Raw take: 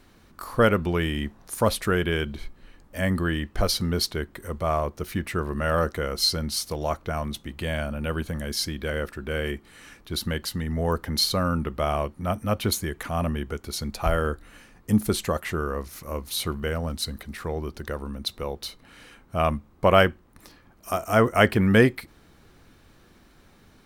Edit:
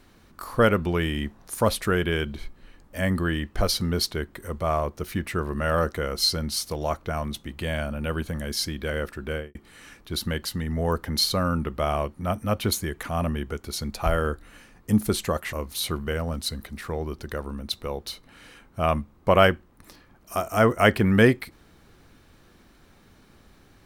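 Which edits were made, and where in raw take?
9.29–9.55 s: studio fade out
15.53–16.09 s: delete

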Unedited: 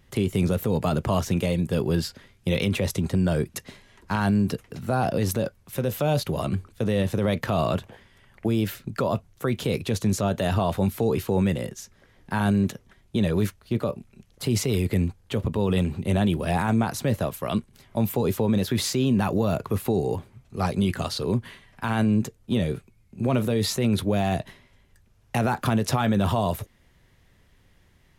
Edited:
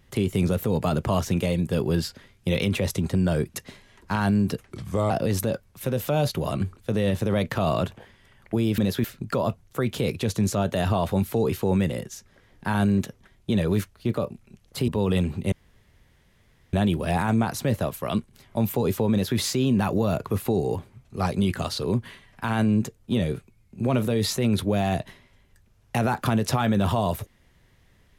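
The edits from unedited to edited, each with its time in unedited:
4.65–5.02 s: speed 82%
14.54–15.49 s: delete
16.13 s: insert room tone 1.21 s
18.51–18.77 s: copy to 8.70 s

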